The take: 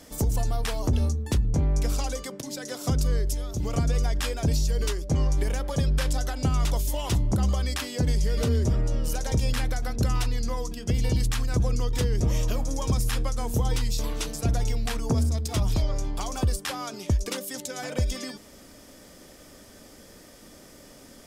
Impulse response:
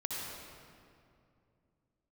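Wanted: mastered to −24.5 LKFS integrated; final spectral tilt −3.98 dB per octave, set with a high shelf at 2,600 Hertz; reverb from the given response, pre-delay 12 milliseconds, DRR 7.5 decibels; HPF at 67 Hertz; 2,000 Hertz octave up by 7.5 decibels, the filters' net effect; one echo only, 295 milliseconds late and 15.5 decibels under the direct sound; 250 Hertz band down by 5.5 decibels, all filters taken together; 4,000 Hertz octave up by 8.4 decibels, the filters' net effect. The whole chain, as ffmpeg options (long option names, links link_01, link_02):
-filter_complex "[0:a]highpass=67,equalizer=frequency=250:width_type=o:gain=-8,equalizer=frequency=2000:width_type=o:gain=6.5,highshelf=frequency=2600:gain=3,equalizer=frequency=4000:width_type=o:gain=6.5,aecho=1:1:295:0.168,asplit=2[link_01][link_02];[1:a]atrim=start_sample=2205,adelay=12[link_03];[link_02][link_03]afir=irnorm=-1:irlink=0,volume=-10.5dB[link_04];[link_01][link_04]amix=inputs=2:normalize=0,volume=2.5dB"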